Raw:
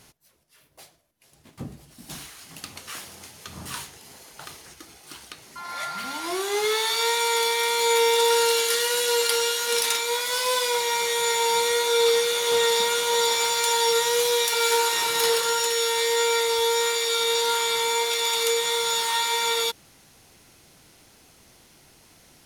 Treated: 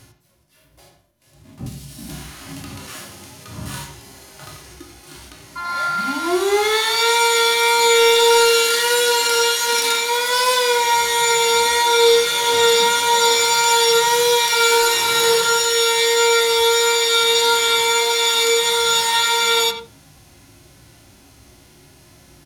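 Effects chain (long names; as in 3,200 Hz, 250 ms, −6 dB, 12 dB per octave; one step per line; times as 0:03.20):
on a send at −7.5 dB: convolution reverb RT60 0.40 s, pre-delay 3 ms
on the sum: harmonic and percussive parts rebalanced percussive −17 dB
far-end echo of a speakerphone 90 ms, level −9 dB
0:01.66–0:02.87: multiband upward and downward compressor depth 100%
level +8 dB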